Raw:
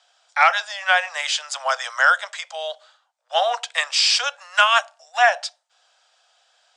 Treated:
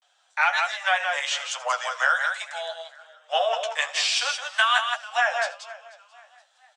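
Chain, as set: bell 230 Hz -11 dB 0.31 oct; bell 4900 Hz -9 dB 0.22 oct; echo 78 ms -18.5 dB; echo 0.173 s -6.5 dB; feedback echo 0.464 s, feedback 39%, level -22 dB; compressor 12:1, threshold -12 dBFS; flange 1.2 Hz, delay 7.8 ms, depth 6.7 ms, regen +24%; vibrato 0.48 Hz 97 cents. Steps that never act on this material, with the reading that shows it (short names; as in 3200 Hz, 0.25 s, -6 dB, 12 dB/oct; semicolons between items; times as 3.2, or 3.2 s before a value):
bell 230 Hz: input band starts at 450 Hz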